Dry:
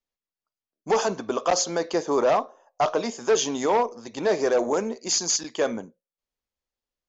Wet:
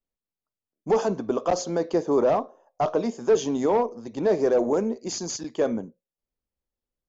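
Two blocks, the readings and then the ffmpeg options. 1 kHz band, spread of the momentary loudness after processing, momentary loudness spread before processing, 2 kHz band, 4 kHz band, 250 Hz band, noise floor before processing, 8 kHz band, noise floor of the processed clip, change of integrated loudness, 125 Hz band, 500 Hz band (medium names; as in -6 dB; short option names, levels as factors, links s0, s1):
-3.0 dB, 9 LU, 5 LU, -7.0 dB, -9.0 dB, +3.5 dB, under -85 dBFS, no reading, under -85 dBFS, -0.5 dB, +4.5 dB, +1.0 dB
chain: -af "tiltshelf=f=740:g=7.5,volume=0.794"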